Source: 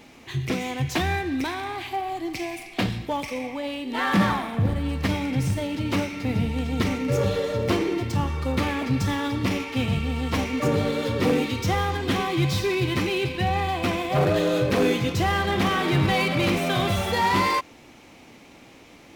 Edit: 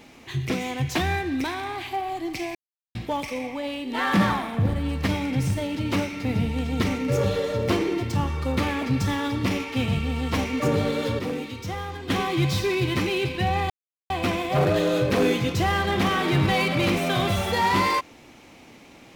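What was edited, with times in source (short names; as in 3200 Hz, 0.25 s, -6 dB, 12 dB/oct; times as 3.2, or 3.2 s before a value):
2.55–2.95 mute
11.19–12.1 gain -8 dB
13.7 insert silence 0.40 s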